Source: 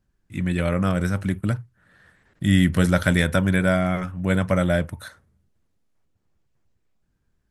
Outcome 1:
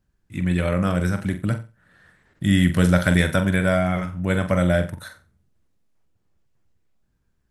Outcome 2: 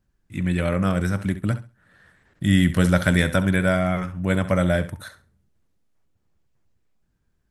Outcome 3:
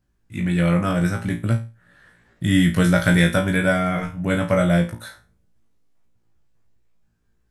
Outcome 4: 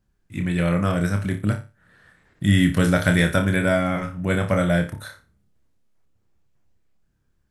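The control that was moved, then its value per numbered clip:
flutter echo, walls apart: 7.7, 11.5, 3, 5 m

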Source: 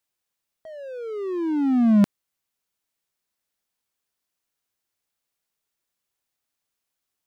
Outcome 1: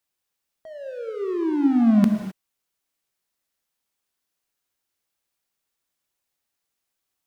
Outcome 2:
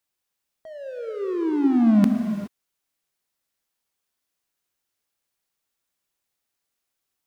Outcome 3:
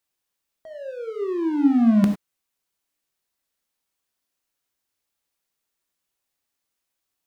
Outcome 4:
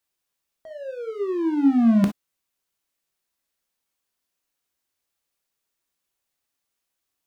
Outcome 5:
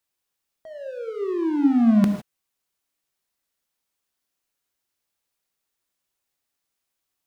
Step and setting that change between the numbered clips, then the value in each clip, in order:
non-linear reverb, gate: 280, 440, 120, 80, 180 ms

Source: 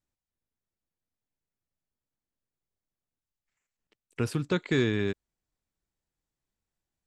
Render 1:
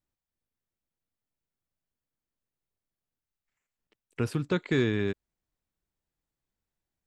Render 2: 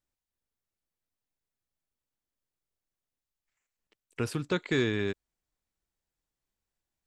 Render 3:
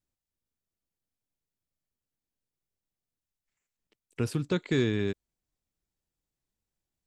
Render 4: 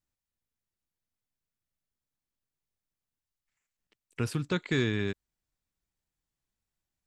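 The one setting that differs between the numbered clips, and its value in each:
bell, frequency: 7400, 150, 1400, 450 Hz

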